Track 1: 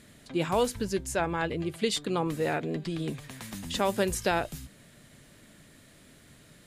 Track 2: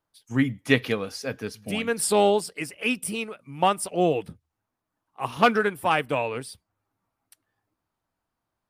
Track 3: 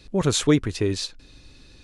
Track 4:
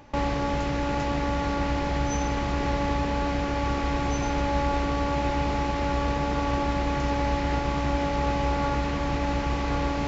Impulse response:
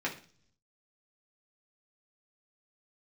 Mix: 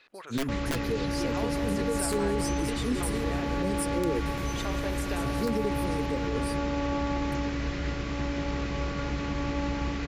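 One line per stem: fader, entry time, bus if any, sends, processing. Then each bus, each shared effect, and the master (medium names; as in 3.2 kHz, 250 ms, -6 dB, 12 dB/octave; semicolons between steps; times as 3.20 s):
-3.5 dB, 0.85 s, bus A, no send, echo send -16 dB, gate -44 dBFS, range -18 dB; treble shelf 7.7 kHz +10.5 dB
+2.5 dB, 0.00 s, bus B, no send, no echo send, FFT band-reject 580–3900 Hz; integer overflow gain 14 dB; flange 0.24 Hz, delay 2.6 ms, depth 9.2 ms, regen +46%
+3.0 dB, 0.00 s, bus A, no send, echo send -13 dB, peak limiter -16.5 dBFS, peak gain reduction 9 dB; compression 3:1, threshold -32 dBFS, peak gain reduction 9 dB; band-pass filter 1.7 kHz, Q 1.1
-3.5 dB, 0.35 s, bus B, no send, echo send -10 dB, none
bus A: 0.0 dB, tone controls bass -13 dB, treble -10 dB; compression, threshold -34 dBFS, peak gain reduction 9 dB
bus B: 0.0 dB, peaking EQ 810 Hz -11.5 dB 0.52 oct; peak limiter -20.5 dBFS, peak gain reduction 9 dB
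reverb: none
echo: feedback delay 183 ms, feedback 53%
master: none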